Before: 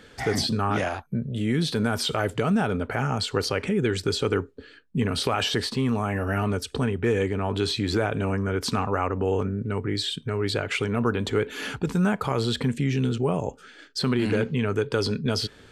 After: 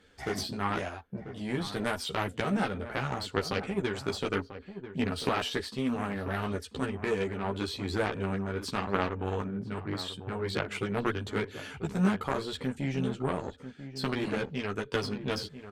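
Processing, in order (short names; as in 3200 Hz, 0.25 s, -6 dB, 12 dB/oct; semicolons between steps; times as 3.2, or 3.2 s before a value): added harmonics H 3 -12 dB, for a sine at -10 dBFS; chorus voices 6, 0.79 Hz, delay 13 ms, depth 2.7 ms; outdoor echo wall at 170 m, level -11 dB; gain +3.5 dB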